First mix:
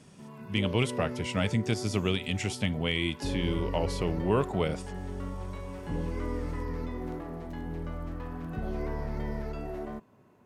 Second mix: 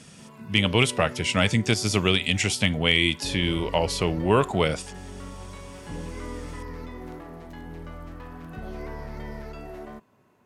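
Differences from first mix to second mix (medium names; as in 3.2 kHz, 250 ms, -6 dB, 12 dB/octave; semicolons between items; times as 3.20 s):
speech +8.0 dB; master: add tilt shelf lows -3.5 dB, about 920 Hz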